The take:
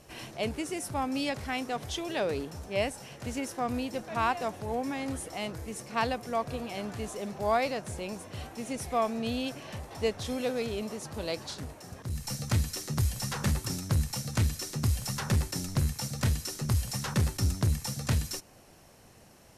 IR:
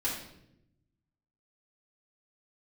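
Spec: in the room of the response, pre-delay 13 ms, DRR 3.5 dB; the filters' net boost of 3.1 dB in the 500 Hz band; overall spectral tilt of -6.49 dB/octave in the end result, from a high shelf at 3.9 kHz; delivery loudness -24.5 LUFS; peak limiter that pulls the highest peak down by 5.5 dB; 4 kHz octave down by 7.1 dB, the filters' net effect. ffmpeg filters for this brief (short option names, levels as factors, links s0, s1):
-filter_complex "[0:a]equalizer=f=500:t=o:g=4,highshelf=f=3900:g=-6.5,equalizer=f=4000:t=o:g=-5.5,alimiter=limit=0.1:level=0:latency=1,asplit=2[s0][s1];[1:a]atrim=start_sample=2205,adelay=13[s2];[s1][s2]afir=irnorm=-1:irlink=0,volume=0.355[s3];[s0][s3]amix=inputs=2:normalize=0,volume=2.11"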